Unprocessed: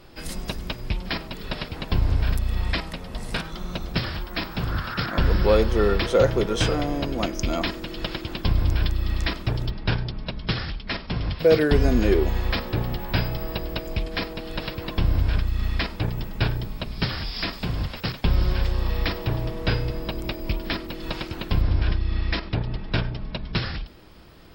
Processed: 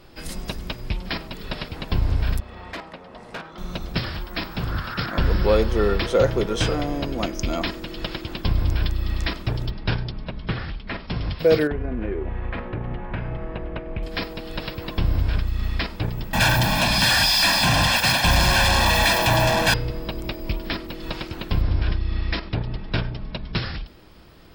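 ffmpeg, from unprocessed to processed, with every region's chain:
-filter_complex "[0:a]asettb=1/sr,asplit=3[a][b][c];[a]atrim=end=2.404[d];[b]atrim=start=2.4:end=3.58,asetpts=PTS-STARTPTS,afade=t=in:d=0.004:c=qsin,afade=t=out:st=1.176:d=0.004:c=qsin,bandpass=f=780:t=q:w=0.62,volume=27.5dB,asoftclip=hard,volume=-27.5dB[e];[c]atrim=start=3.576[f];[d][e]acrossfade=d=0.004:c1=hsin:c2=qsin[g];[g][f]acrossfade=d=0.004:c1=qsin:c2=hsin,asettb=1/sr,asplit=3[h][i][j];[h]atrim=end=10.194[k];[i]atrim=start=10.19:end=11.07,asetpts=PTS-STARTPTS,afade=t=in:d=0.004:c=qsin,afade=t=out:st=0.876:d=0.004:c=qsin,lowpass=5k,acrossover=split=2800[l][m];[m]acompressor=threshold=-46dB:ratio=4:attack=1:release=60[n];[l][n]amix=inputs=2:normalize=0[o];[j]atrim=start=11.066[p];[k][o]acrossfade=d=0.004:c1=hsin:c2=qsin[q];[q][p]acrossfade=d=0.004:c1=qsin:c2=hsin,asettb=1/sr,asplit=3[r][s][t];[r]atrim=end=11.674[u];[s]atrim=start=11.67:end=14.03,asetpts=PTS-STARTPTS,afade=t=in:d=0.004:c=qsin,afade=t=out:st=2.356:d=0.004:c=qsin,lowpass=f=2.4k:w=0.5412,lowpass=f=2.4k:w=1.3066,acompressor=threshold=-23dB:ratio=5:attack=3.2:release=140:knee=1:detection=peak[v];[t]atrim=start=14.026[w];[u][v]acrossfade=d=0.004:c1=hsin:c2=qsin[x];[x][w]acrossfade=d=0.004:c1=qsin:c2=hsin,asettb=1/sr,asplit=3[y][z][aa];[y]atrim=end=16.334[ab];[z]atrim=start=16.33:end=19.74,asetpts=PTS-STARTPTS,afade=t=in:d=0.004:c=qsin,afade=t=out:st=3.406:d=0.004:c=qsin,flanger=delay=1.2:depth=6.6:regen=-74:speed=1.1:shape=sinusoidal,asplit=2[ac][ad];[ad]highpass=f=720:p=1,volume=40dB,asoftclip=type=tanh:threshold=-13.5dB[ae];[ac][ae]amix=inputs=2:normalize=0,lowpass=f=7.1k:p=1,volume=-6dB,aecho=1:1:1.2:0.85,atrim=end_sample=150381[af];[aa]atrim=start=19.736[ag];[ab][af]acrossfade=d=0.004:c1=hsin:c2=qsin[ah];[ah][ag]acrossfade=d=0.004:c1=qsin:c2=hsin"

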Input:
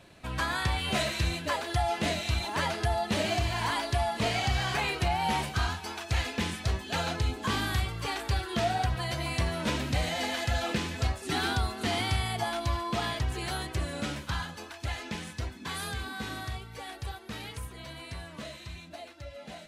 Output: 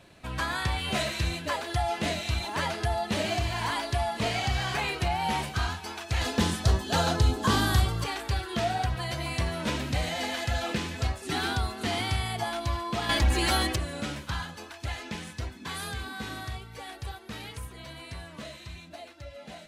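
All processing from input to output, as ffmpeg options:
-filter_complex "[0:a]asettb=1/sr,asplit=3[a][b][c];[a]atrim=end=6.214[d];[b]atrim=start=6.21:end=8.04,asetpts=PTS-STARTPTS,afade=t=in:d=0.004:c=qsin,afade=t=out:st=1.826:d=0.004:c=qsin,equalizer=f=2.3k:w=2.1:g=-9.5,acontrast=69[e];[c]atrim=start=8.036[f];[d][e]acrossfade=d=0.004:c1=hsin:c2=qsin[g];[g][f]acrossfade=d=0.004:c1=qsin:c2=hsin,asettb=1/sr,asplit=3[h][i][j];[h]atrim=end=13.094[k];[i]atrim=start=13.09:end=13.76,asetpts=PTS-STARTPTS,afade=t=in:d=0.004:c=qsin,afade=t=out:st=0.666:d=0.004:c=qsin,aeval=exprs='0.112*sin(PI/2*1.78*val(0)/0.112)':c=same,aecho=1:1:3.6:0.72,atrim=end_sample=29547[l];[j]atrim=start=13.756[m];[k][l]acrossfade=d=0.004:c1=hsin:c2=qsin[n];[n][m]acrossfade=d=0.004:c1=qsin:c2=hsin"

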